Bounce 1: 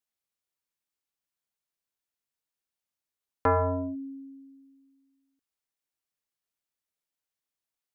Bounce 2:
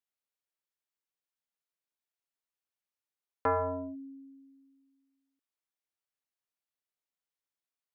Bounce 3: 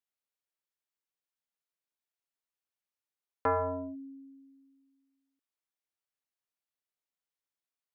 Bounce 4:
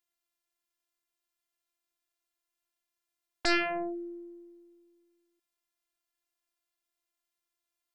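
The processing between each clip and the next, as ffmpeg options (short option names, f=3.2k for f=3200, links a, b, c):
-af "bass=f=250:g=-7,treble=f=4k:g=-4,volume=-4dB"
-af anull
-af "afftfilt=real='hypot(re,im)*cos(PI*b)':imag='0':win_size=512:overlap=0.75,aeval=exprs='0.141*(cos(1*acos(clip(val(0)/0.141,-1,1)))-cos(1*PI/2))+0.0631*(cos(7*acos(clip(val(0)/0.141,-1,1)))-cos(7*PI/2))':c=same,volume=2.5dB"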